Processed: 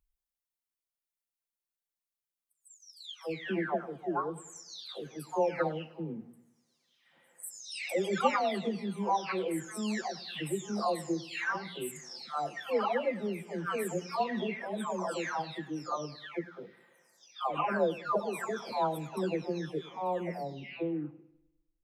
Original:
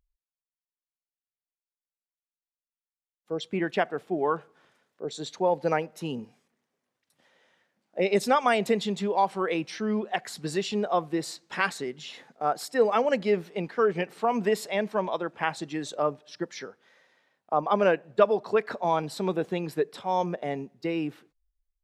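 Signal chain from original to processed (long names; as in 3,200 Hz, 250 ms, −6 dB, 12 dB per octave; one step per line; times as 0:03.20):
every frequency bin delayed by itself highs early, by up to 765 ms
high-shelf EQ 8,900 Hz +4 dB
hum removal 59.59 Hz, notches 4
in parallel at −2.5 dB: downward compressor, threshold −44 dBFS, peak gain reduction 25 dB
on the sum: feedback echo with a low-pass in the loop 101 ms, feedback 48%, low-pass 4,900 Hz, level −18 dB
level −4.5 dB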